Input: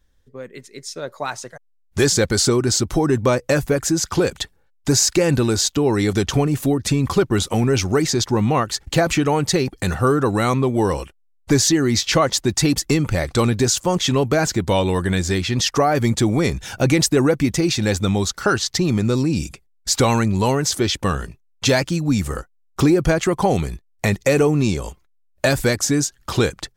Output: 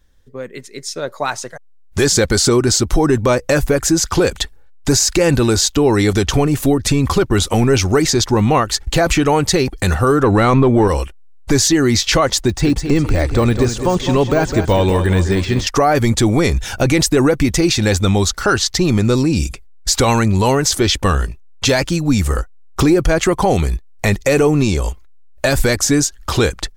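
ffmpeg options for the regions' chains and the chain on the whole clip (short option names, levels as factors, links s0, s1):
-filter_complex "[0:a]asettb=1/sr,asplit=3[s0][s1][s2];[s0]atrim=end=10.234[s3];[s1]atrim=start=10.23:end=10.88,asetpts=PTS-STARTPTS,afade=t=in:d=0.004:c=qsin,afade=t=out:st=0.646:d=0.004:c=qsin,lowpass=f=2200:p=1,acontrast=74[s4];[s2]atrim=start=10.876[s5];[s3][s4]acrossfade=d=0.004:c1=hsin:c2=qsin[s6];[s6][s5]acrossfade=d=0.004:c1=qsin:c2=hsin,asettb=1/sr,asplit=3[s7][s8][s9];[s7]atrim=end=12.434[s10];[s8]atrim=start=12.43:end=15.67,asetpts=PTS-STARTPTS,afade=t=in:d=0.004:c=qsin,afade=t=out:st=3.236:d=0.004:c=qsin,lowpass=f=11000:w=0.5412,lowpass=f=11000:w=1.3066,deesser=0.8,aecho=1:1:206|412|618|824:0.316|0.133|0.0558|0.0234,atrim=end_sample=142884[s11];[s9]atrim=start=15.666[s12];[s10][s11]acrossfade=d=0.004:c1=hsin:c2=qsin[s13];[s13][s12]acrossfade=d=0.004:c1=qsin:c2=hsin,asubboost=boost=5:cutoff=57,alimiter=level_in=3.16:limit=0.891:release=50:level=0:latency=1,volume=0.631"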